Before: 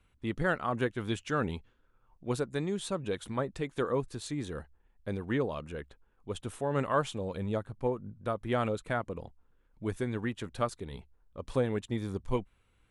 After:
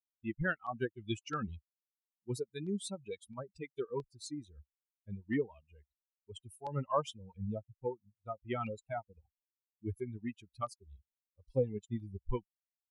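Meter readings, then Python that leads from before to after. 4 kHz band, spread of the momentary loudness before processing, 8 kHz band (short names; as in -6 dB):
-6.0 dB, 13 LU, -4.5 dB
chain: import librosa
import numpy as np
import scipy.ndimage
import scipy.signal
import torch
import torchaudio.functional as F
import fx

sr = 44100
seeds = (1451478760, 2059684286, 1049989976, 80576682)

y = fx.bin_expand(x, sr, power=3.0)
y = fx.filter_lfo_notch(y, sr, shape='saw_down', hz=1.5, low_hz=490.0, high_hz=4200.0, q=2.3)
y = F.gain(torch.from_numpy(y), 2.0).numpy()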